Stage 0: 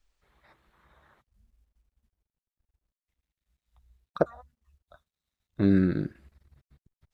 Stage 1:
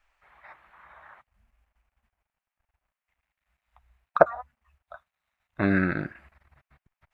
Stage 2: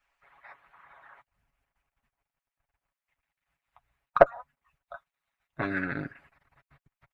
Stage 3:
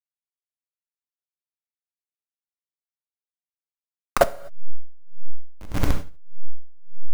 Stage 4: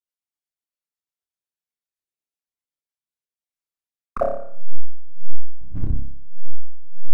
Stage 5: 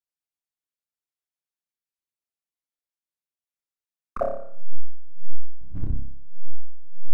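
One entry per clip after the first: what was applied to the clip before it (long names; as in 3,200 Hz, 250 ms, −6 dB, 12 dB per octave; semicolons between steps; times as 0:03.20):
flat-topped bell 1,300 Hz +15.5 dB 2.5 octaves; level −2.5 dB
one-sided soft clipper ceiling −1.5 dBFS; harmonic and percussive parts rebalanced harmonic −13 dB; comb filter 7.2 ms, depth 53%
hold until the input has moved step −16.5 dBFS; reverb whose tail is shaped and stops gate 270 ms flat, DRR 4 dB; tremolo with a sine in dB 1.7 Hz, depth 25 dB; level +7 dB
spectral envelope exaggerated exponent 2; rotating-speaker cabinet horn 8 Hz, later 1 Hz, at 0:02.52; flutter between parallel walls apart 5 metres, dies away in 0.6 s; level −1 dB
pitch vibrato 1.3 Hz 21 cents; level −4 dB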